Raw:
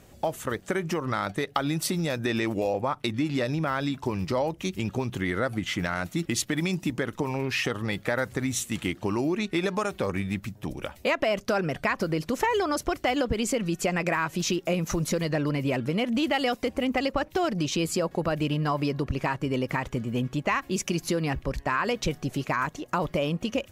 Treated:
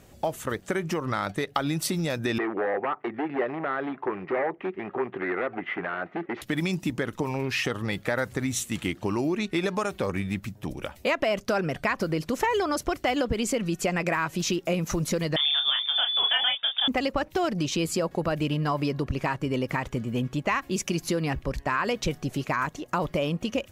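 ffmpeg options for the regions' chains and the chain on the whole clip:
ffmpeg -i in.wav -filter_complex "[0:a]asettb=1/sr,asplit=3[link_01][link_02][link_03];[link_01]atrim=end=2.384[link_04];[link_02]atrim=start=2.38:end=6.42,asetpts=PTS-STARTPTS,afade=type=in:duration=0.004:curve=qsin,afade=type=out:start_time=4.036:duration=0.004:curve=qsin,aeval=exprs='0.0668*(abs(mod(val(0)/0.0668+3,4)-2)-1)':channel_layout=same,highpass=300,equalizer=frequency=390:width_type=q:width=4:gain=9,equalizer=frequency=760:width_type=q:width=4:gain=6,equalizer=frequency=1200:width_type=q:width=4:gain=4,equalizer=frequency=1900:width_type=q:width=4:gain=6,lowpass=frequency=2200:width=0.5412,lowpass=frequency=2200:width=1.3066[link_05];[link_03]atrim=start=6.416[link_06];[link_04][link_05]acrossfade=duration=0.004:curve1=hsin:curve2=qsin[link_07];[link_07][link_06]acrossfade=duration=0.004:curve1=qsin:curve2=hsin,asettb=1/sr,asplit=3[link_08][link_09][link_10];[link_08]atrim=end=15.364[link_11];[link_09]atrim=start=15.36:end=16.88,asetpts=PTS-STARTPTS,afade=type=in:duration=0.004:curve=qsin,afade=type=out:start_time=1.516:duration=0.004:curve=qsin,asplit=2[link_12][link_13];[link_13]adelay=28,volume=-5.5dB[link_14];[link_12][link_14]amix=inputs=2:normalize=0,atrim=end_sample=67032,lowpass=frequency=3100:width_type=q:width=0.5098,lowpass=frequency=3100:width_type=q:width=0.6013,lowpass=frequency=3100:width_type=q:width=0.9,lowpass=frequency=3100:width_type=q:width=2.563,afreqshift=-3700[link_15];[link_10]atrim=start=16.876[link_16];[link_11][link_15]acrossfade=duration=0.004:curve1=hsin:curve2=qsin[link_17];[link_17][link_16]acrossfade=duration=0.004:curve1=qsin:curve2=hsin" out.wav

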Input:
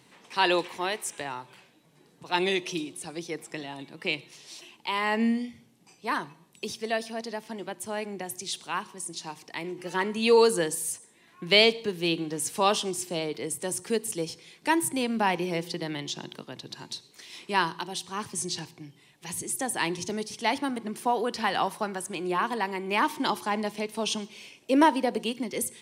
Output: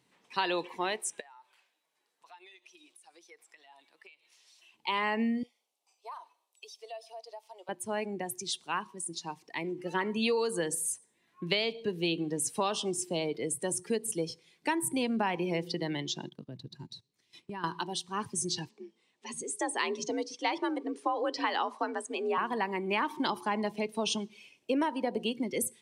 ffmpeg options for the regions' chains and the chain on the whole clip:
ffmpeg -i in.wav -filter_complex "[0:a]asettb=1/sr,asplit=3[link_01][link_02][link_03];[link_01]atrim=end=1.204[link_04];[link_02]atrim=start=1.2:end=4.74,asetpts=PTS-STARTPTS,afade=type=in:duration=0.004:curve=qsin,afade=type=out:start_time=3.536:duration=0.004:curve=qsin,highpass=770,acompressor=threshold=-45dB:ratio=8:attack=3.2:release=140:knee=1:detection=peak[link_05];[link_03]atrim=start=4.736[link_06];[link_04][link_05]acrossfade=duration=0.004:curve1=hsin:curve2=qsin[link_07];[link_07][link_06]acrossfade=duration=0.004:curve1=qsin:curve2=hsin,asettb=1/sr,asplit=3[link_08][link_09][link_10];[link_08]atrim=end=5.434[link_11];[link_09]atrim=start=5.43:end=7.69,asetpts=PTS-STARTPTS,afade=type=in:duration=0.004:curve=qsin,afade=type=out:start_time=2.256:duration=0.004:curve=qsin,highpass=frequency=580:width=0.5412,highpass=frequency=580:width=1.3066,equalizer=frequency=1700:width=2.4:gain=-13,acompressor=threshold=-41dB:ratio=3:attack=3.2:release=140:knee=1:detection=peak[link_12];[link_10]atrim=start=7.686[link_13];[link_11][link_12]acrossfade=duration=0.004:curve1=hsin:curve2=qsin[link_14];[link_14][link_13]acrossfade=duration=0.004:curve1=qsin:curve2=hsin,asettb=1/sr,asplit=3[link_15][link_16][link_17];[link_15]atrim=end=16.294[link_18];[link_16]atrim=start=16.29:end=17.64,asetpts=PTS-STARTPTS,afade=type=in:duration=0.004:curve=qsin,afade=type=out:start_time=1.346:duration=0.004:curve=qsin,agate=range=-14dB:threshold=-45dB:ratio=16:release=100:detection=peak,equalizer=frequency=100:width_type=o:width=2.6:gain=12,acompressor=threshold=-39dB:ratio=4:attack=3.2:release=140:knee=1:detection=peak[link_19];[link_17]atrim=start=17.636[link_20];[link_18][link_19]acrossfade=duration=0.004:curve1=hsin:curve2=qsin[link_21];[link_21][link_20]acrossfade=duration=0.004:curve1=qsin:curve2=hsin,asettb=1/sr,asplit=3[link_22][link_23][link_24];[link_22]atrim=end=18.694[link_25];[link_23]atrim=start=18.69:end=22.38,asetpts=PTS-STARTPTS,afade=type=in:duration=0.004:curve=qsin,afade=type=out:start_time=3.686:duration=0.004:curve=qsin,lowpass=frequency=8600:width=0.5412,lowpass=frequency=8600:width=1.3066,equalizer=frequency=140:width_type=o:width=0.33:gain=-13,afreqshift=58[link_26];[link_24]atrim=start=22.376[link_27];[link_25][link_26]acrossfade=duration=0.004:curve1=hsin:curve2=qsin[link_28];[link_28][link_27]acrossfade=duration=0.004:curve1=qsin:curve2=hsin,afftdn=noise_reduction=13:noise_floor=-39,acompressor=threshold=-26dB:ratio=10" out.wav

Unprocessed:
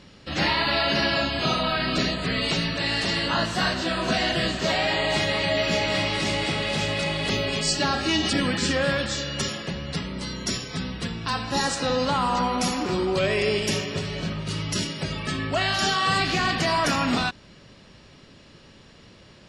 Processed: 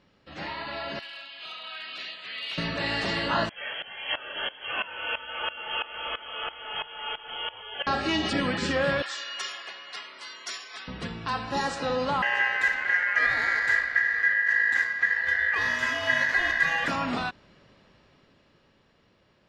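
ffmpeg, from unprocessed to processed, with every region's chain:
ffmpeg -i in.wav -filter_complex "[0:a]asettb=1/sr,asplit=3[link_01][link_02][link_03];[link_01]atrim=end=0.994[link_04];[link_02]atrim=start=0.99:end=2.58,asetpts=PTS-STARTPTS,afade=type=in:duration=0.004:curve=qsin,afade=type=out:start_time=1.586:duration=0.004:curve=qsin,bandpass=frequency=3100:width_type=q:width=1.9,volume=23.5dB,asoftclip=hard,volume=-23.5dB[link_05];[link_03]atrim=start=2.576[link_06];[link_04][link_05]acrossfade=duration=0.004:curve1=hsin:curve2=qsin[link_07];[link_07][link_06]acrossfade=duration=0.004:curve1=qsin:curve2=hsin,asettb=1/sr,asplit=3[link_08][link_09][link_10];[link_08]atrim=end=3.494[link_11];[link_09]atrim=start=3.49:end=7.87,asetpts=PTS-STARTPTS,afade=type=in:duration=0.004:curve=qsin,afade=type=out:start_time=4.376:duration=0.004:curve=qsin,lowpass=frequency=2900:width_type=q:width=0.5098,lowpass=frequency=2900:width_type=q:width=0.6013,lowpass=frequency=2900:width_type=q:width=0.9,lowpass=frequency=2900:width_type=q:width=2.563,afreqshift=-3400,aeval=exprs='val(0)*pow(10,-18*if(lt(mod(-3*n/s,1),2*abs(-3)/1000),1-mod(-3*n/s,1)/(2*abs(-3)/1000),(mod(-3*n/s,1)-2*abs(-3)/1000)/(1-2*abs(-3)/1000))/20)':channel_layout=same[link_12];[link_10]atrim=start=7.866[link_13];[link_11][link_12]acrossfade=duration=0.004:curve1=hsin:curve2=qsin[link_14];[link_14][link_13]acrossfade=duration=0.004:curve1=qsin:curve2=hsin,asettb=1/sr,asplit=3[link_15][link_16][link_17];[link_15]atrim=end=9.024[link_18];[link_16]atrim=start=9.02:end=10.88,asetpts=PTS-STARTPTS,afade=type=in:duration=0.004:curve=qsin,afade=type=out:start_time=1.856:duration=0.004:curve=qsin,highpass=1100,aecho=1:1:2.8:0.39,atrim=end_sample=82026[link_19];[link_17]atrim=start=10.876[link_20];[link_18][link_19]acrossfade=duration=0.004:curve1=hsin:curve2=qsin[link_21];[link_21][link_20]acrossfade=duration=0.004:curve1=qsin:curve2=hsin,asettb=1/sr,asplit=3[link_22][link_23][link_24];[link_22]atrim=end=12.224[link_25];[link_23]atrim=start=12.22:end=16.88,asetpts=PTS-STARTPTS,afade=type=in:duration=0.004:curve=qsin,afade=type=out:start_time=4.656:duration=0.004:curve=qsin,lowshelf=frequency=240:width_type=q:width=1.5:gain=12,adynamicsmooth=sensitivity=5:basefreq=2300,aeval=exprs='val(0)*sin(2*PI*1800*n/s)':channel_layout=same[link_26];[link_24]atrim=start=16.876[link_27];[link_25][link_26]acrossfade=duration=0.004:curve1=hsin:curve2=qsin[link_28];[link_28][link_27]acrossfade=duration=0.004:curve1=qsin:curve2=hsin,lowpass=frequency=1400:poles=1,lowshelf=frequency=430:gain=-9,dynaudnorm=framelen=160:gausssize=21:maxgain=11dB,volume=-7.5dB" out.wav

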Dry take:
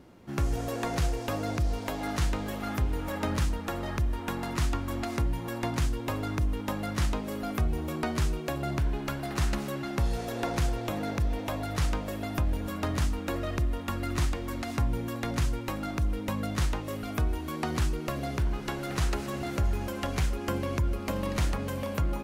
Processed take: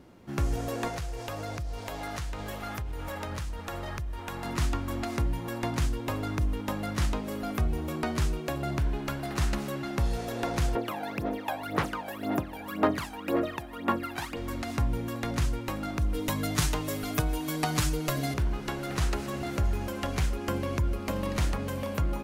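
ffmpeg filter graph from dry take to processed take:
ffmpeg -i in.wav -filter_complex "[0:a]asettb=1/sr,asplit=3[link_01][link_02][link_03];[link_01]atrim=end=0.884[link_04];[link_02]atrim=start=0.88:end=4.45,asetpts=PTS-STARTPTS,afade=type=in:duration=0.004:curve=qsin,afade=type=out:start_time=3.566:duration=0.004:curve=qsin,equalizer=frequency=250:width=1.4:gain=-8.5,acompressor=threshold=-31dB:ratio=6:attack=3.2:release=140:knee=1:detection=peak[link_05];[link_03]atrim=start=4.446[link_06];[link_04][link_05]acrossfade=duration=0.004:curve1=hsin:curve2=qsin[link_07];[link_07][link_06]acrossfade=duration=0.004:curve1=qsin:curve2=hsin,asettb=1/sr,asplit=3[link_08][link_09][link_10];[link_08]atrim=end=10.754[link_11];[link_09]atrim=start=10.75:end=14.37,asetpts=PTS-STARTPTS,afade=type=in:duration=0.004:curve=qsin,afade=type=out:start_time=3.616:duration=0.004:curve=qsin,highpass=280,equalizer=frequency=6600:width_type=o:width=1.6:gain=-9.5,aphaser=in_gain=1:out_gain=1:delay=1.3:decay=0.74:speed=1.9:type=sinusoidal[link_12];[link_10]atrim=start=14.366[link_13];[link_11][link_12]acrossfade=duration=0.004:curve1=hsin:curve2=qsin[link_14];[link_14][link_13]acrossfade=duration=0.004:curve1=qsin:curve2=hsin,asettb=1/sr,asplit=3[link_15][link_16][link_17];[link_15]atrim=end=16.144[link_18];[link_16]atrim=start=16.14:end=18.34,asetpts=PTS-STARTPTS,afade=type=in:duration=0.004:curve=qsin,afade=type=out:start_time=2.196:duration=0.004:curve=qsin,highshelf=frequency=4400:gain=9,aecho=1:1:6.7:0.87,atrim=end_sample=97020[link_19];[link_17]atrim=start=18.336[link_20];[link_18][link_19]acrossfade=duration=0.004:curve1=hsin:curve2=qsin[link_21];[link_21][link_20]acrossfade=duration=0.004:curve1=qsin:curve2=hsin" out.wav

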